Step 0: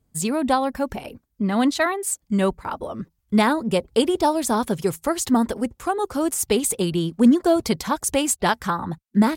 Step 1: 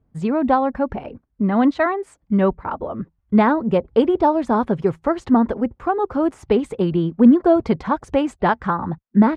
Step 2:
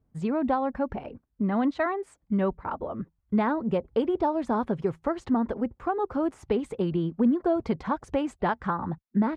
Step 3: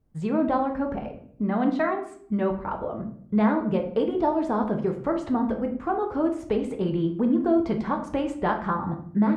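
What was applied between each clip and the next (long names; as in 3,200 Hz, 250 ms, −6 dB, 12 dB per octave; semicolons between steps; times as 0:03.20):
low-pass filter 1,600 Hz 12 dB per octave; level +3.5 dB
downward compressor 2 to 1, threshold −17 dBFS, peak gain reduction 6 dB; level −6 dB
rectangular room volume 94 cubic metres, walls mixed, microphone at 0.52 metres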